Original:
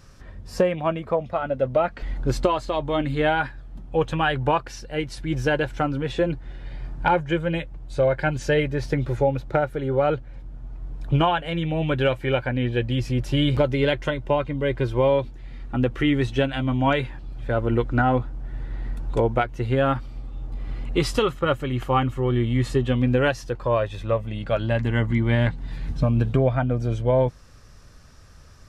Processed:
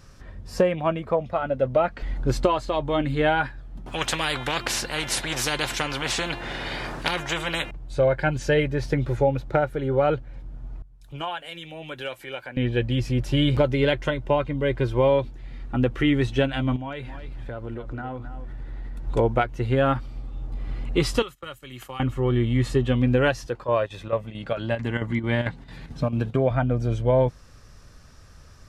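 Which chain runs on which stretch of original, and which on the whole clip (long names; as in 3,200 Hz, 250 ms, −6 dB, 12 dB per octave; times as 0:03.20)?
0:03.86–0:07.71: hum removal 346.9 Hz, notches 12 + every bin compressed towards the loudest bin 4 to 1
0:10.82–0:12.57: RIAA equalisation recording + downward compressor 2 to 1, threshold −37 dBFS + multiband upward and downward expander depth 100%
0:16.76–0:19.07: downward compressor 5 to 1, threshold −31 dBFS + single-tap delay 266 ms −10.5 dB
0:21.22–0:22.00: first-order pre-emphasis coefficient 0.9 + noise gate −51 dBFS, range −17 dB + multiband upward and downward compressor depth 100%
0:23.46–0:26.51: high-pass filter 180 Hz 6 dB per octave + square-wave tremolo 4.5 Hz, depth 60%, duty 80%
whole clip: no processing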